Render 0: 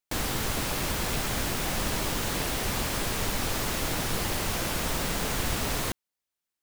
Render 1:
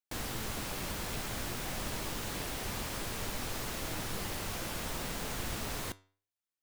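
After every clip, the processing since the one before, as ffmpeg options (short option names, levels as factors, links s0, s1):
-af "flanger=delay=7.9:depth=2.6:regen=85:speed=0.58:shape=triangular,volume=0.631"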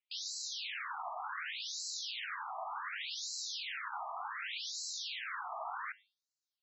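-af "afftfilt=real='re*between(b*sr/1024,890*pow(5600/890,0.5+0.5*sin(2*PI*0.67*pts/sr))/1.41,890*pow(5600/890,0.5+0.5*sin(2*PI*0.67*pts/sr))*1.41)':imag='im*between(b*sr/1024,890*pow(5600/890,0.5+0.5*sin(2*PI*0.67*pts/sr))/1.41,890*pow(5600/890,0.5+0.5*sin(2*PI*0.67*pts/sr))*1.41)':win_size=1024:overlap=0.75,volume=2.11"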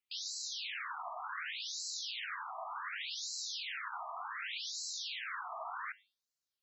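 -af "equalizer=f=820:t=o:w=0.23:g=-6"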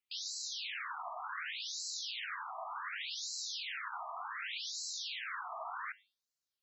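-af anull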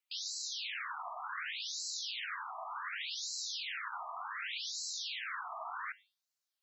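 -af "highpass=660,volume=1.12"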